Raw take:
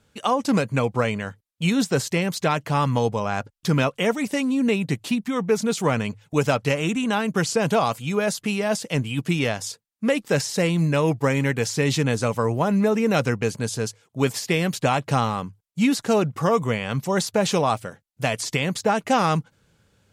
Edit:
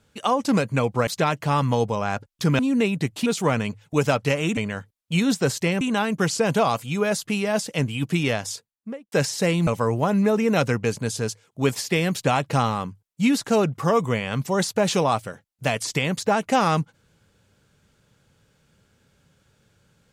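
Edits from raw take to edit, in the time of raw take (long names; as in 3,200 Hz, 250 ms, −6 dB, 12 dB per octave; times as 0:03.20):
0:01.07–0:02.31: move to 0:06.97
0:03.83–0:04.47: remove
0:05.14–0:05.66: remove
0:09.70–0:10.28: fade out and dull
0:10.83–0:12.25: remove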